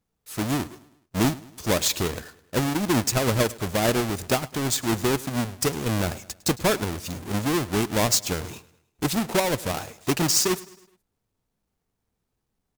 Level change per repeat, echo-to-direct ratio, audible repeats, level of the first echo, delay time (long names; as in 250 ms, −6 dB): −6.5 dB, −19.5 dB, 3, −20.5 dB, 105 ms